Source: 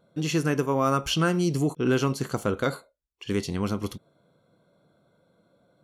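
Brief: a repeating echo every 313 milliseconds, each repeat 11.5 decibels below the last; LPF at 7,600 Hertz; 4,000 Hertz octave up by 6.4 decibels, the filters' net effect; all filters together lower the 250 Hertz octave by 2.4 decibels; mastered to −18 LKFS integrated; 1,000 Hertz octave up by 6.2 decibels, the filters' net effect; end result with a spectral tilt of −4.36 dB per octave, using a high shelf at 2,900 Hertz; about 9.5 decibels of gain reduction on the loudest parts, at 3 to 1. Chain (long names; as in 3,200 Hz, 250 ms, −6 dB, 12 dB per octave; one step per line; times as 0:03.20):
low-pass filter 7,600 Hz
parametric band 250 Hz −4 dB
parametric band 1,000 Hz +7 dB
high-shelf EQ 2,900 Hz +4.5 dB
parametric band 4,000 Hz +5 dB
downward compressor 3 to 1, threshold −29 dBFS
repeating echo 313 ms, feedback 27%, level −11.5 dB
level +13.5 dB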